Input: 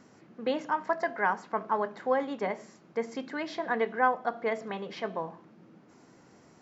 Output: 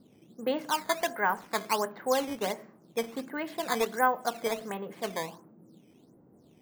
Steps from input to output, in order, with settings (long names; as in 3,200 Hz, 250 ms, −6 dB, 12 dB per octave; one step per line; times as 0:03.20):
low-pass that shuts in the quiet parts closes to 450 Hz, open at −26 dBFS
sample-and-hold swept by an LFO 9×, swing 160% 1.4 Hz